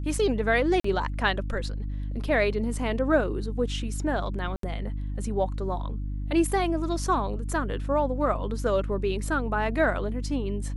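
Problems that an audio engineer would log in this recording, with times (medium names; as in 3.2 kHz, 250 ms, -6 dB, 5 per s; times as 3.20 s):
hum 50 Hz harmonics 6 -31 dBFS
0.80–0.84 s: dropout 44 ms
4.56–4.63 s: dropout 73 ms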